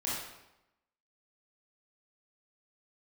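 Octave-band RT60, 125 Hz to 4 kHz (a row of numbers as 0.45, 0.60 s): 0.90, 0.95, 0.90, 0.90, 0.80, 0.75 s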